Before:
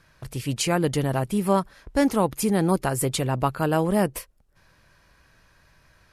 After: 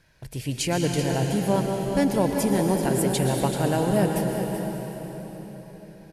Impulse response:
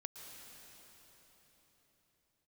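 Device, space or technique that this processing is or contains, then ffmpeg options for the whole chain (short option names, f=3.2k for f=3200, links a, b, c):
cave: -filter_complex "[0:a]aecho=1:1:384:0.316[a];[1:a]atrim=start_sample=2205[b];[a][b]afir=irnorm=-1:irlink=0,equalizer=f=1.2k:t=o:w=0.27:g=-15,volume=3.5dB"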